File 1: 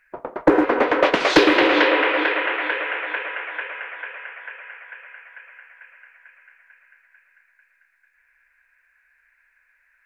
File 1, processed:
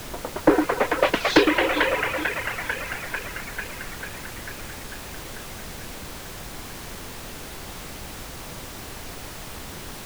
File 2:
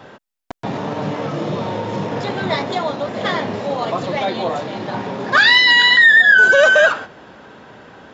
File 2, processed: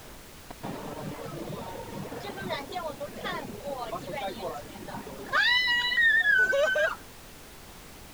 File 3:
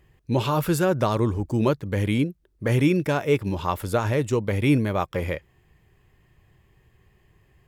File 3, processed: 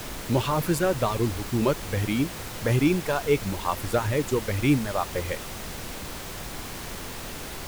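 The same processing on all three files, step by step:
reverb removal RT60 2 s; added noise pink -35 dBFS; match loudness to -27 LUFS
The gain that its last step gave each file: -1.5, -12.0, -1.0 dB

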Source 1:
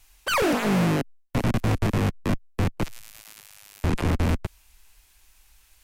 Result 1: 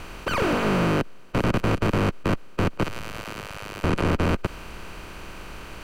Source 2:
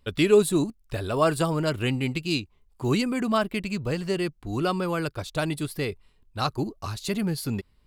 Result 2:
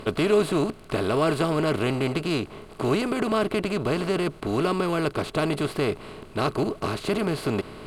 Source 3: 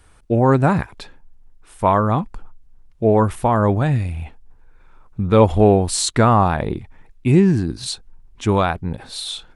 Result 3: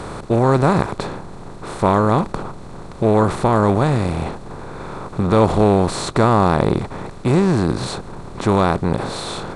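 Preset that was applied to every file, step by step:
per-bin compression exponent 0.4; high shelf 5000 Hz -10 dB; gain -4.5 dB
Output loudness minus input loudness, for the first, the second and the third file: 0.0, +1.0, 0.0 LU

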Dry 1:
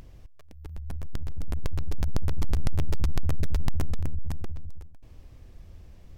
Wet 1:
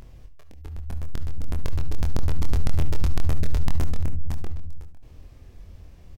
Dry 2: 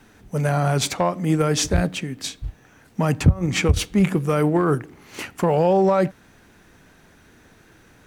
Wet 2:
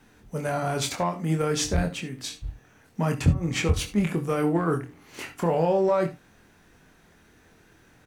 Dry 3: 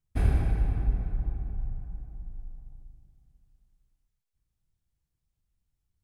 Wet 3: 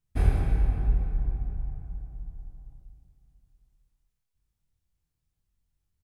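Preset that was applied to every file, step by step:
doubler 24 ms -5 dB; non-linear reverb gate 90 ms rising, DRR 12 dB; normalise peaks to -9 dBFS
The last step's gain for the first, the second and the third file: +1.0, -6.0, -0.5 dB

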